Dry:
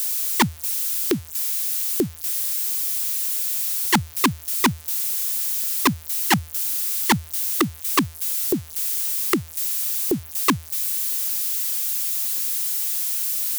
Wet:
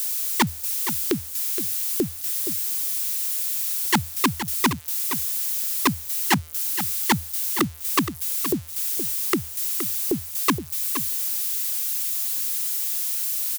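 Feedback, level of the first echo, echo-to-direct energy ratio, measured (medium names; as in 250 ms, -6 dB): no regular repeats, -10.0 dB, -10.0 dB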